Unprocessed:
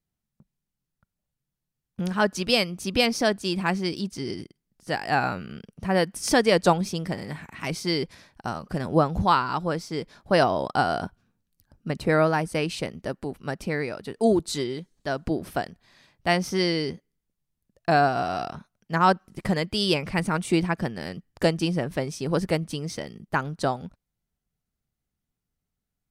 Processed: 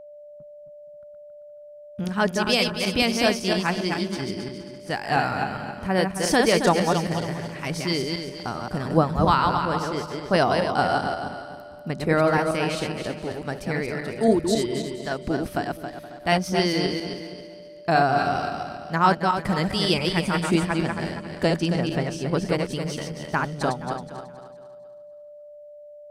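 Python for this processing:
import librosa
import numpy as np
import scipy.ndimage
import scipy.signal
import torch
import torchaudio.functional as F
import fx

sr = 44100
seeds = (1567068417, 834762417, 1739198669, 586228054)

y = fx.reverse_delay_fb(x, sr, ms=136, feedback_pct=56, wet_db=-3.5)
y = fx.high_shelf(y, sr, hz=10000.0, db=-9.5, at=(20.69, 22.72))
y = fx.echo_feedback(y, sr, ms=471, feedback_pct=20, wet_db=-18)
y = y + 10.0 ** (-40.0 / 20.0) * np.sin(2.0 * np.pi * 590.0 * np.arange(len(y)) / sr)
y = fx.peak_eq(y, sr, hz=540.0, db=-2.5, octaves=0.27)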